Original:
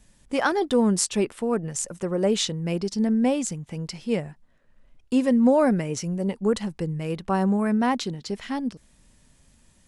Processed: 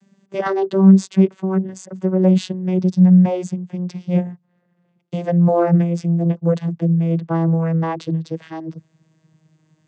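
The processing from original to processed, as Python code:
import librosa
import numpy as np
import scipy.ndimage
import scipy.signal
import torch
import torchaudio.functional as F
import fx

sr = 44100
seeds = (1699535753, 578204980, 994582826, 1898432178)

y = fx.vocoder_glide(x, sr, note=55, semitones=-4)
y = y * 10.0 ** (8.0 / 20.0)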